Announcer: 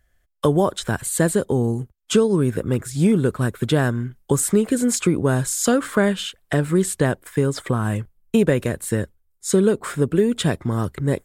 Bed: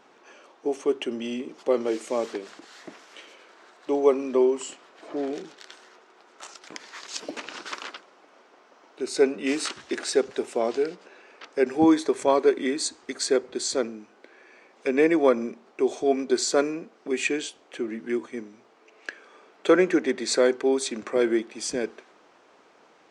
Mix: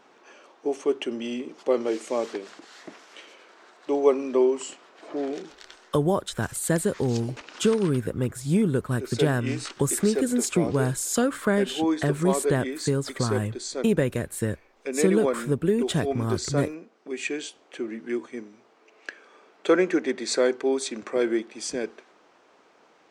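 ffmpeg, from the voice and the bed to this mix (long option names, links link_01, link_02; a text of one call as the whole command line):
ffmpeg -i stem1.wav -i stem2.wav -filter_complex "[0:a]adelay=5500,volume=-5dB[link_01];[1:a]volume=4.5dB,afade=type=out:start_time=5.54:duration=0.61:silence=0.501187,afade=type=in:start_time=17.14:duration=0.41:silence=0.595662[link_02];[link_01][link_02]amix=inputs=2:normalize=0" out.wav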